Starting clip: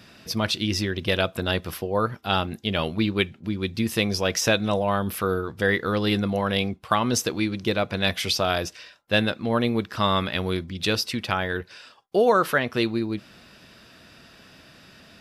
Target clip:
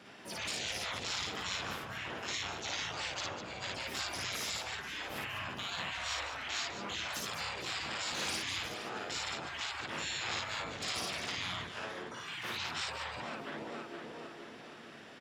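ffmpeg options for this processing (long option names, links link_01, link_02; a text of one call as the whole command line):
ffmpeg -i in.wav -filter_complex "[0:a]acrossover=split=200 3000:gain=0.141 1 0.126[link_01][link_02][link_03];[link_01][link_02][link_03]amix=inputs=3:normalize=0,asplit=2[link_04][link_05];[link_05]aecho=0:1:465|930|1395|1860|2325:0.15|0.0808|0.0436|0.0236|0.0127[link_06];[link_04][link_06]amix=inputs=2:normalize=0,asplit=4[link_07][link_08][link_09][link_10];[link_08]asetrate=29433,aresample=44100,atempo=1.49831,volume=-6dB[link_11];[link_09]asetrate=52444,aresample=44100,atempo=0.840896,volume=-3dB[link_12];[link_10]asetrate=88200,aresample=44100,atempo=0.5,volume=-5dB[link_13];[link_07][link_11][link_12][link_13]amix=inputs=4:normalize=0,afftfilt=real='re*lt(hypot(re,im),0.0794)':imag='im*lt(hypot(re,im),0.0794)':win_size=1024:overlap=0.75,asplit=2[link_14][link_15];[link_15]aecho=0:1:55.39|201.2:0.891|0.355[link_16];[link_14][link_16]amix=inputs=2:normalize=0,volume=-5.5dB" out.wav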